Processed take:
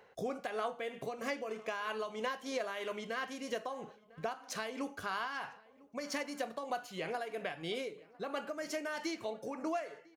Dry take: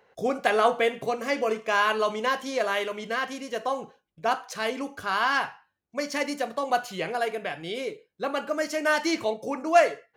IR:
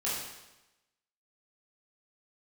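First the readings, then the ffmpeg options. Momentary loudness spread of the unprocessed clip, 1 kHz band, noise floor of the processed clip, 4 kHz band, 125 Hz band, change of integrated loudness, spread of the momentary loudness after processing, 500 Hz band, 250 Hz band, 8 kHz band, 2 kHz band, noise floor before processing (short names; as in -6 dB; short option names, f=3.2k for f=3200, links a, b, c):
11 LU, -14.0 dB, -62 dBFS, -11.0 dB, -6.5 dB, -12.5 dB, 5 LU, -12.5 dB, -9.5 dB, -9.0 dB, -13.5 dB, -75 dBFS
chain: -filter_complex "[0:a]acompressor=threshold=-35dB:ratio=6,asplit=2[a][b];[b]adelay=1001,lowpass=f=2.1k:p=1,volume=-22.5dB,asplit=2[c][d];[d]adelay=1001,lowpass=f=2.1k:p=1,volume=0.51,asplit=2[e][f];[f]adelay=1001,lowpass=f=2.1k:p=1,volume=0.51[g];[a][c][e][g]amix=inputs=4:normalize=0,tremolo=f=3.1:d=0.41,volume=1dB"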